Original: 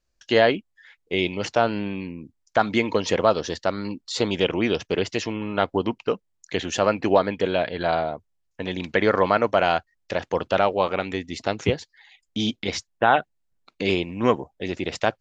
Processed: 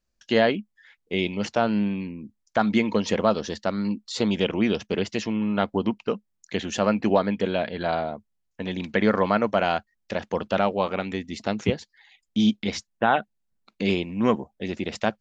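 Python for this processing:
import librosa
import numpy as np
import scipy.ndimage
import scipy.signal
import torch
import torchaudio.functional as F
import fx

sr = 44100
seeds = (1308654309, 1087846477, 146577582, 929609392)

y = fx.peak_eq(x, sr, hz=210.0, db=11.0, octaves=0.32)
y = y * 10.0 ** (-3.0 / 20.0)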